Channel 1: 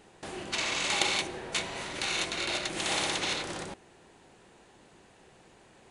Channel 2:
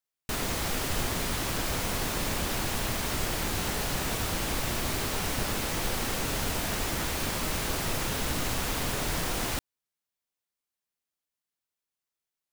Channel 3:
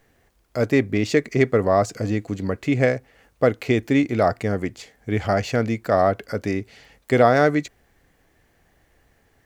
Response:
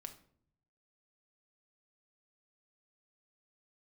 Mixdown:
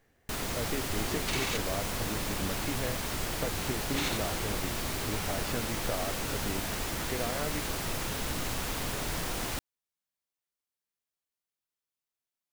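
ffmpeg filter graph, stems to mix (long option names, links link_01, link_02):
-filter_complex "[0:a]adelay=750,volume=-3.5dB,asplit=3[link_01][link_02][link_03];[link_01]atrim=end=1.57,asetpts=PTS-STARTPTS,afade=type=out:start_time=1.566:duration=0.004:curve=hsin[link_04];[link_02]atrim=start=1.57:end=3.94,asetpts=PTS-STARTPTS,volume=0[link_05];[link_03]atrim=start=3.94,asetpts=PTS-STARTPTS,afade=type=in:duration=0.004:curve=hsin[link_06];[link_04][link_05][link_06]concat=n=3:v=0:a=1[link_07];[1:a]volume=-3.5dB[link_08];[2:a]acompressor=threshold=-26dB:ratio=6,volume=-7.5dB[link_09];[link_07][link_08][link_09]amix=inputs=3:normalize=0"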